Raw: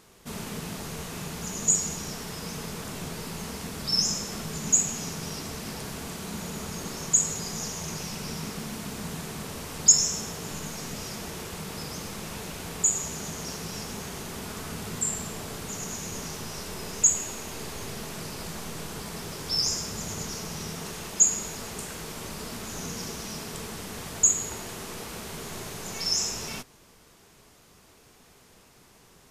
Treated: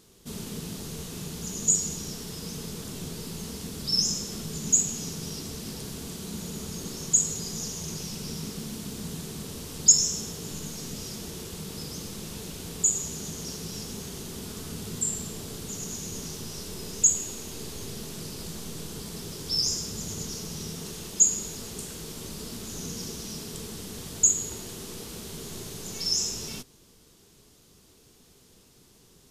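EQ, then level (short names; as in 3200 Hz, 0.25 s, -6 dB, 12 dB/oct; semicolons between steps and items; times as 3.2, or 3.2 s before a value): band shelf 1200 Hz -8.5 dB 2.4 oct; 0.0 dB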